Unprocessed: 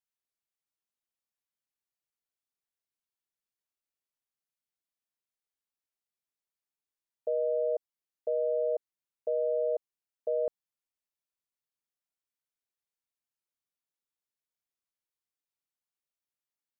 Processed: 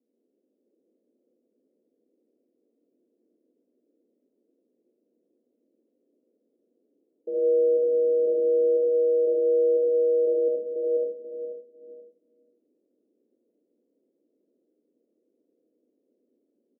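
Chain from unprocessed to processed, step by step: one-bit delta coder 64 kbps, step -52 dBFS; feedback delay 485 ms, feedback 28%, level -3.5 dB; gate -54 dBFS, range -10 dB; bass shelf 360 Hz +11 dB; 7.58–8.64 s: word length cut 6-bit, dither triangular; overload inside the chain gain 28 dB; Chebyshev band-pass 240–500 Hz, order 3; reverberation RT60 0.45 s, pre-delay 30 ms, DRR -3 dB; trim +2.5 dB

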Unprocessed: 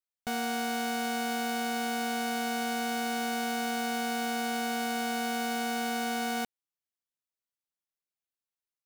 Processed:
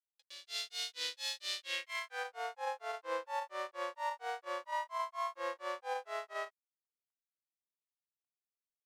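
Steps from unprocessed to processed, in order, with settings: steep high-pass 380 Hz 72 dB/octave; peaking EQ 970 Hz -12 dB 2.7 oct; peak limiter -31.5 dBFS, peak gain reduction 10 dB; level rider gain up to 16 dB; granulator 230 ms, grains 4.3 per s, pitch spread up and down by 7 st; small resonant body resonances 510/1900 Hz, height 10 dB, ringing for 50 ms; companded quantiser 6-bit; band-pass sweep 3.9 kHz -> 990 Hz, 1.56–2.37 s; trim +1.5 dB

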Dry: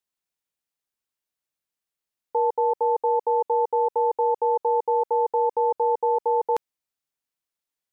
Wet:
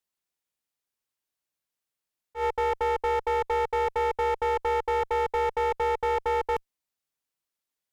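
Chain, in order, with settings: one-sided clip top -26 dBFS, bottom -20 dBFS; slow attack 103 ms

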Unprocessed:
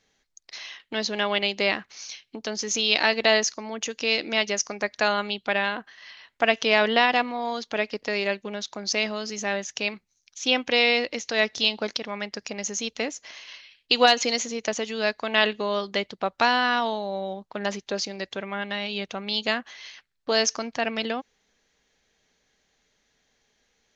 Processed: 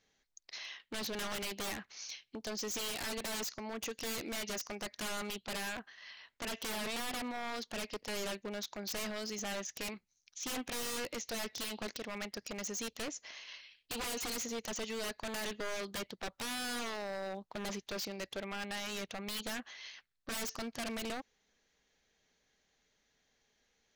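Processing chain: peak limiter -10.5 dBFS, peak gain reduction 6.5 dB; wavefolder -27 dBFS; trim -6.5 dB

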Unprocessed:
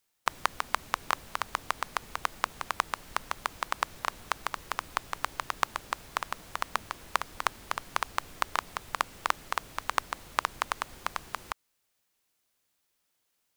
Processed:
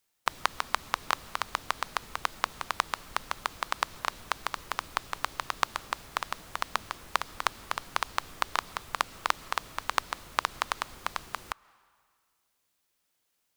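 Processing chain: dynamic bell 4.1 kHz, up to +4 dB, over -49 dBFS, Q 1.2; on a send: reverberation RT60 1.9 s, pre-delay 90 ms, DRR 23 dB

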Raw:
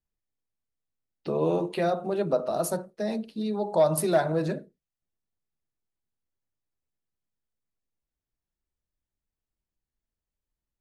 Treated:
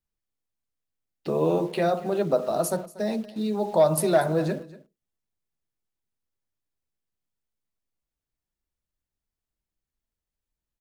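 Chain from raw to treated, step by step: in parallel at -11 dB: bit crusher 7-bit; on the sum: delay 237 ms -19 dB

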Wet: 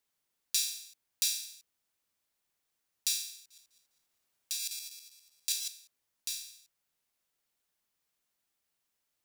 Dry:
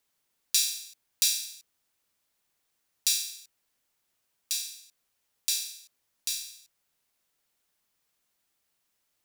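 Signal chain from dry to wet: 3.38–5.68 s: backward echo that repeats 101 ms, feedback 57%, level -2 dB; trim -5.5 dB

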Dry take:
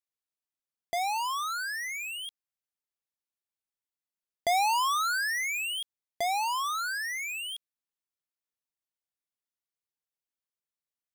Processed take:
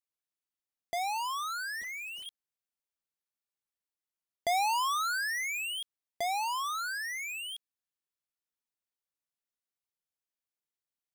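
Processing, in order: 1.81–2.26 s: median filter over 25 samples; trim -3 dB

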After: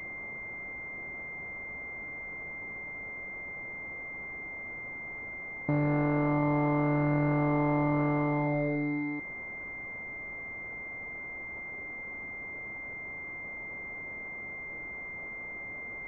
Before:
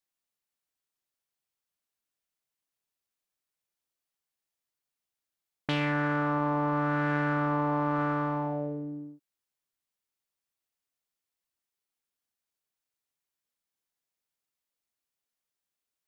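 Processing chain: jump at every zero crossing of -30 dBFS; distance through air 220 m; class-D stage that switches slowly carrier 2.1 kHz

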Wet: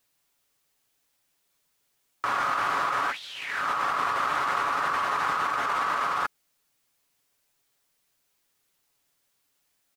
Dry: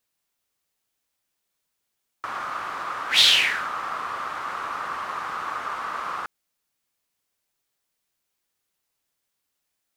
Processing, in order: comb 7.1 ms, depth 34%; compressor with a negative ratio -31 dBFS, ratio -1; trim +2 dB

